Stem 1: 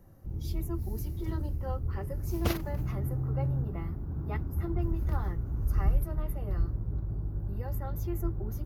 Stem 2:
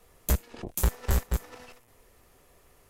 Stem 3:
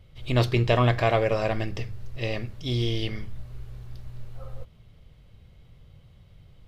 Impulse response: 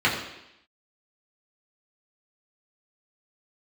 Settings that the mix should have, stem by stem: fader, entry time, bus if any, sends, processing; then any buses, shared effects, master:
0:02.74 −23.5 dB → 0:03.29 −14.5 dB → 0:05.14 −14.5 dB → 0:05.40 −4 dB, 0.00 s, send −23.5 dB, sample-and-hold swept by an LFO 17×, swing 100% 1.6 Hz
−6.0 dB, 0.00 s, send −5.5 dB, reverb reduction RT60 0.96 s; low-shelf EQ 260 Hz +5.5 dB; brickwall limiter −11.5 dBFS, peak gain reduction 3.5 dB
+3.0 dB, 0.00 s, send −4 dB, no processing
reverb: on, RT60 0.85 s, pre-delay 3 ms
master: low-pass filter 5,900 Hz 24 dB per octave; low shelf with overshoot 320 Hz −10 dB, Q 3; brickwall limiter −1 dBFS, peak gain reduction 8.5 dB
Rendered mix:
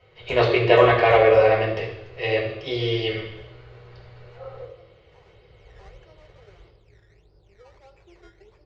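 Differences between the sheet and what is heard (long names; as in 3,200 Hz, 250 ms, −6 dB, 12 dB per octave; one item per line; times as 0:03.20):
stem 1 −23.5 dB → −33.0 dB
stem 2 −6.0 dB → −15.5 dB
stem 3 +3.0 dB → −6.5 dB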